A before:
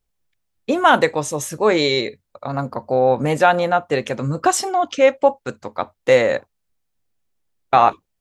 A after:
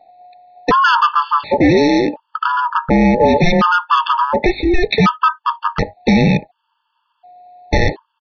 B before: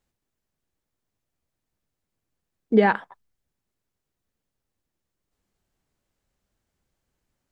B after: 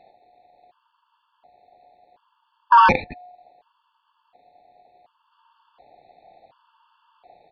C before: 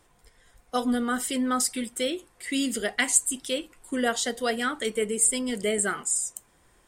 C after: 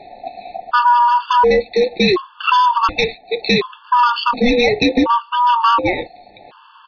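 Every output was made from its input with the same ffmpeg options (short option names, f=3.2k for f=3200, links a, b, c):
-af "equalizer=f=1.1k:w=0.94:g=-14.5,acompressor=threshold=-36dB:ratio=2.5,aresample=8000,aresample=44100,aresample=11025,asoftclip=type=hard:threshold=-33dB,aresample=44100,aeval=exprs='val(0)*sin(2*PI*720*n/s)':c=same,apsyclip=32.5dB,aeval=exprs='1.12*(cos(1*acos(clip(val(0)/1.12,-1,1)))-cos(1*PI/2))+0.00708*(cos(2*acos(clip(val(0)/1.12,-1,1)))-cos(2*PI/2))':c=same,afftfilt=real='re*gt(sin(2*PI*0.69*pts/sr)*(1-2*mod(floor(b*sr/1024/880),2)),0)':imag='im*gt(sin(2*PI*0.69*pts/sr)*(1-2*mod(floor(b*sr/1024/880),2)),0)':win_size=1024:overlap=0.75,volume=-2dB"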